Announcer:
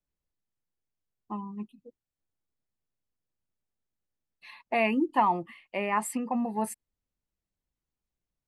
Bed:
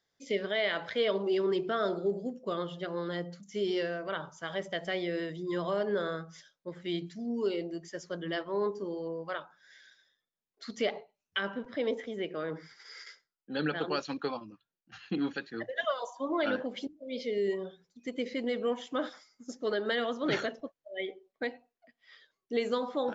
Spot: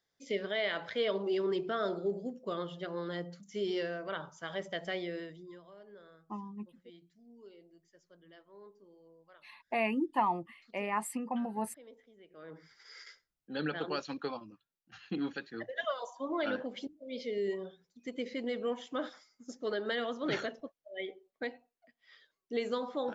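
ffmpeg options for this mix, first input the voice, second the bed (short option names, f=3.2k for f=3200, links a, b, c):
-filter_complex "[0:a]adelay=5000,volume=-5.5dB[a];[1:a]volume=17dB,afade=t=out:st=4.91:d=0.7:silence=0.0944061,afade=t=in:st=12.29:d=0.68:silence=0.1[b];[a][b]amix=inputs=2:normalize=0"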